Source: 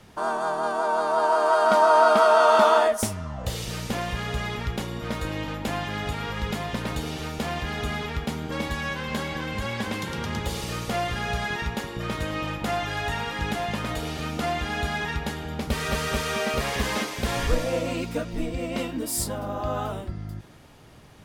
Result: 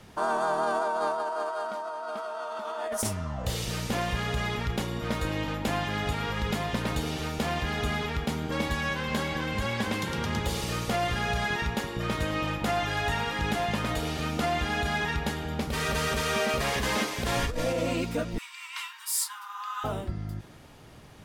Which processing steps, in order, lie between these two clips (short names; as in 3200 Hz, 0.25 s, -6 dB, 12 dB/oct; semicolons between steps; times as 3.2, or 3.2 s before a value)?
18.38–19.84 steep high-pass 910 Hz 96 dB/oct; negative-ratio compressor -26 dBFS, ratio -1; gain -2 dB